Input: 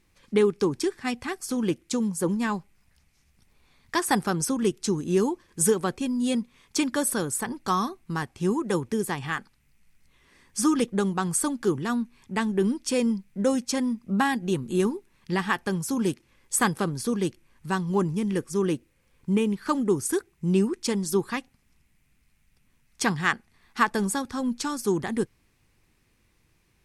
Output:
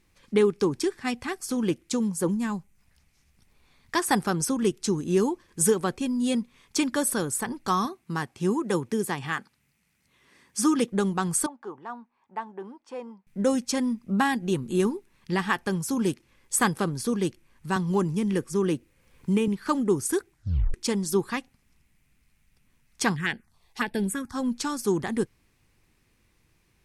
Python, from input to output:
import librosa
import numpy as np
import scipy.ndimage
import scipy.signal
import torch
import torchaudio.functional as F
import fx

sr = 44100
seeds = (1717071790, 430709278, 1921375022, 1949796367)

y = fx.spec_box(x, sr, start_s=2.31, length_s=0.48, low_hz=250.0, high_hz=5700.0, gain_db=-6)
y = fx.highpass(y, sr, hz=110.0, slope=12, at=(7.85, 10.92))
y = fx.bandpass_q(y, sr, hz=860.0, q=2.7, at=(11.46, 13.27))
y = fx.band_squash(y, sr, depth_pct=40, at=(17.76, 19.48))
y = fx.env_phaser(y, sr, low_hz=190.0, high_hz=1200.0, full_db=-21.0, at=(23.15, 24.34), fade=0.02)
y = fx.edit(y, sr, fx.tape_stop(start_s=20.3, length_s=0.44), tone=tone)